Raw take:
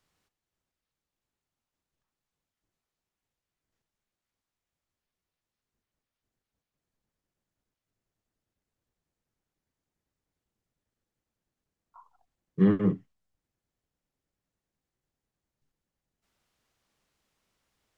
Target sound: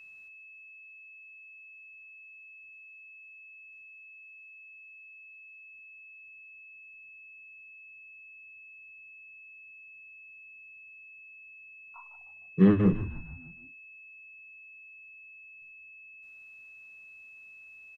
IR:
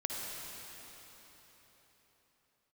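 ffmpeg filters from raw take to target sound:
-filter_complex "[0:a]asplit=6[link_01][link_02][link_03][link_04][link_05][link_06];[link_02]adelay=153,afreqshift=-89,volume=-12.5dB[link_07];[link_03]adelay=306,afreqshift=-178,volume=-18.5dB[link_08];[link_04]adelay=459,afreqshift=-267,volume=-24.5dB[link_09];[link_05]adelay=612,afreqshift=-356,volume=-30.6dB[link_10];[link_06]adelay=765,afreqshift=-445,volume=-36.6dB[link_11];[link_01][link_07][link_08][link_09][link_10][link_11]amix=inputs=6:normalize=0,aeval=exprs='val(0)+0.00316*sin(2*PI*2600*n/s)':channel_layout=same,volume=2dB"

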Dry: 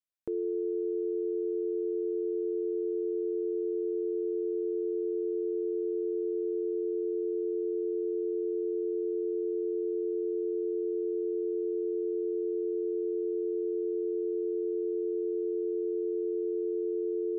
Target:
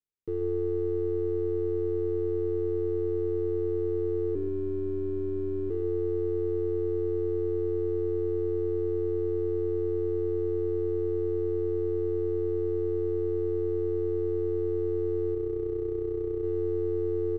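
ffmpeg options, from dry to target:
ffmpeg -i in.wav -filter_complex "[0:a]asettb=1/sr,asplit=3[link_01][link_02][link_03];[link_01]atrim=end=4.354[link_04];[link_02]atrim=start=4.35:end=5.7,asetpts=PTS-STARTPTS,afade=type=in:duration=0.004:curve=qsin,afade=type=out:start_time=1.346:duration=0.004:curve=qsin,afreqshift=-54[link_05];[link_03]atrim=start=5.696[link_06];[link_04][link_05]acrossfade=duration=0.004:curve1=hsin:curve2=qsin[link_07];[link_07][link_06]acrossfade=duration=0.004:curve1=qsin:curve2=hsin,asettb=1/sr,asplit=3[link_08][link_09][link_10];[link_08]atrim=end=15.344[link_11];[link_09]atrim=start=15.34:end=16.44,asetpts=PTS-STARTPTS,afade=type=in:duration=0.004:curve=qsin,afade=type=out:start_time=1.096:duration=0.004:curve=qsin,tremolo=f=31:d=0.621[link_12];[link_10]atrim=start=16.436[link_13];[link_11][link_12]acrossfade=duration=0.004:curve1=hsin:curve2=qsin[link_14];[link_14][link_13]acrossfade=duration=0.004:curve1=qsin:curve2=hsin,aeval=exprs='clip(val(0),-1,0.0119)':channel_layout=same,firequalizer=gain_entry='entry(120,0);entry(270,-7);entry(420,2);entry(660,-30);entry(1100,-14)':delay=0.05:min_phase=1,asplit=2[link_15][link_16];[link_16]aecho=0:1:134:0.224[link_17];[link_15][link_17]amix=inputs=2:normalize=0,volume=5.5dB" out.wav

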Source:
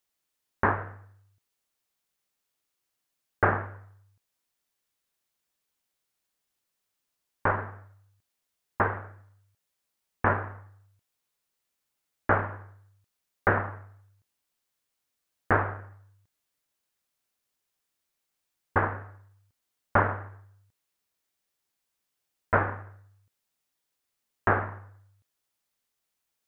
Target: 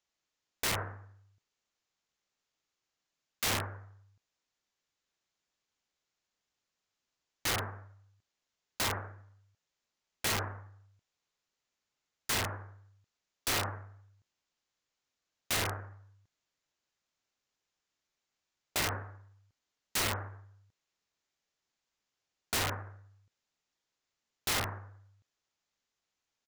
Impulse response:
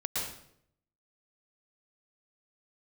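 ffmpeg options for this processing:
-af "aresample=16000,aresample=44100,aeval=exprs='(mod(15.8*val(0)+1,2)-1)/15.8':channel_layout=same,volume=-1dB"

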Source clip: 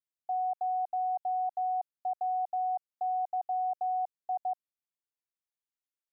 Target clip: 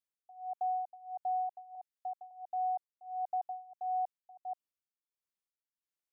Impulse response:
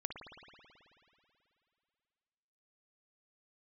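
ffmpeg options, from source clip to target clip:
-filter_complex "[0:a]asettb=1/sr,asplit=3[link_01][link_02][link_03];[link_01]atrim=end=1.754[link_04];[link_02]atrim=start=1.75:end=2.31,asetpts=PTS-STARTPTS,afade=type=in:duration=0.004:curve=qsin,afade=type=out:start_time=0.556:duration=0.004:curve=qsin,highpass=frequency=860:poles=1[link_05];[link_03]atrim=start=2.306[link_06];[link_04][link_05]acrossfade=duration=0.004:curve1=hsin:curve2=qsin[link_07];[link_07][link_06]acrossfade=duration=0.004:curve1=qsin:curve2=hsin,acontrast=28,tremolo=f=1.5:d=0.93,volume=-6.5dB"

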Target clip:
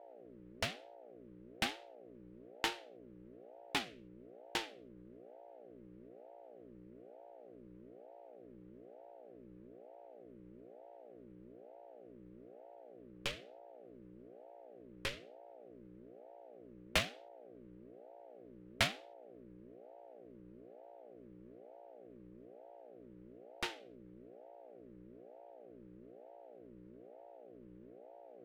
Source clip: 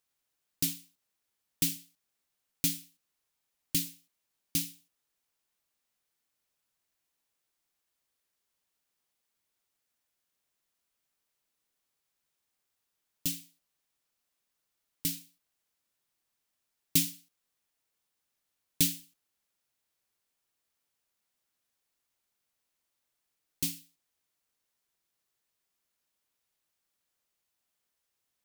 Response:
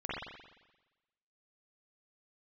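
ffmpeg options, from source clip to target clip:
-filter_complex "[0:a]adynamicsmooth=sensitivity=4:basefreq=3600,acrossover=split=540 2400:gain=0.0794 1 0.0708[link_01][link_02][link_03];[link_01][link_02][link_03]amix=inputs=3:normalize=0,aeval=exprs='val(0)+0.000398*(sin(2*PI*60*n/s)+sin(2*PI*2*60*n/s)/2+sin(2*PI*3*60*n/s)/3+sin(2*PI*4*60*n/s)/4+sin(2*PI*5*60*n/s)/5)':channel_layout=same,aeval=exprs='val(0)*sin(2*PI*440*n/s+440*0.45/1.1*sin(2*PI*1.1*n/s))':channel_layout=same,volume=16dB"

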